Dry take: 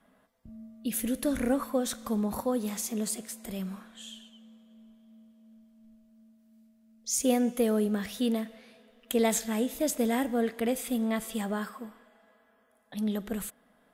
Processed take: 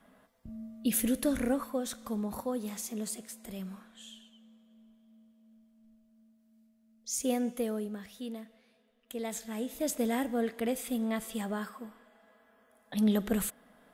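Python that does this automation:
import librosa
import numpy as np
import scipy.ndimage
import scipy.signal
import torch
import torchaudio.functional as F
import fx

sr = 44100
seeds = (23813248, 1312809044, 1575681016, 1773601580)

y = fx.gain(x, sr, db=fx.line((0.91, 3.0), (1.76, -5.0), (7.51, -5.0), (8.05, -12.0), (9.22, -12.0), (9.9, -3.0), (11.77, -3.0), (12.97, 4.0)))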